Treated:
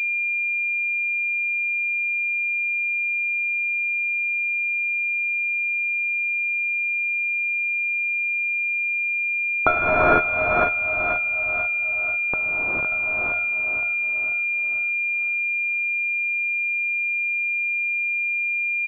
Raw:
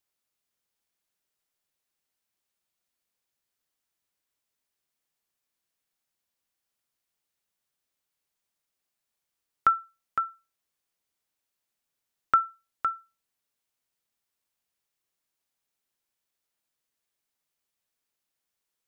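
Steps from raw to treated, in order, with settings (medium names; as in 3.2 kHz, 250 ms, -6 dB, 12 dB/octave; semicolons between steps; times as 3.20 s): peaking EQ 570 Hz +12 dB 2.4 oct; 10.19–12.92 s: compression 12:1, threshold -34 dBFS, peak gain reduction 23 dB; sample-and-hold 16×; feedback delay 491 ms, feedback 52%, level -7.5 dB; gated-style reverb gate 480 ms rising, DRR -5.5 dB; class-D stage that switches slowly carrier 2.4 kHz; trim +4 dB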